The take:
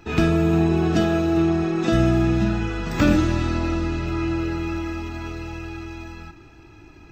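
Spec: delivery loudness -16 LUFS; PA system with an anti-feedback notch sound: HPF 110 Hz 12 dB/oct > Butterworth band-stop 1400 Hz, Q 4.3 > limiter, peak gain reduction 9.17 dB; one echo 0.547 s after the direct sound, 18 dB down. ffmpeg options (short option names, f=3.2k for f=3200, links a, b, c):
-af "highpass=110,asuperstop=centerf=1400:order=8:qfactor=4.3,aecho=1:1:547:0.126,volume=10dB,alimiter=limit=-6.5dB:level=0:latency=1"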